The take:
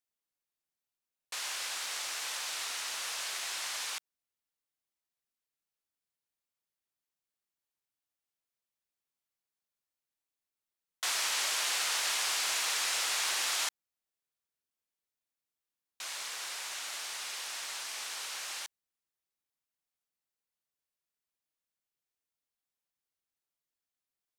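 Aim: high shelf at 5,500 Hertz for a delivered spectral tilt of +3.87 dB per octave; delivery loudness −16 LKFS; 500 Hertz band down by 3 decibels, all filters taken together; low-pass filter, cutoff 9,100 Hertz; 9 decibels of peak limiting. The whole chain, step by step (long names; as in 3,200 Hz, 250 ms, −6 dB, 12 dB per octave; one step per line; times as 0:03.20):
low-pass filter 9,100 Hz
parametric band 500 Hz −4 dB
high-shelf EQ 5,500 Hz −7 dB
level +23.5 dB
brickwall limiter −7.5 dBFS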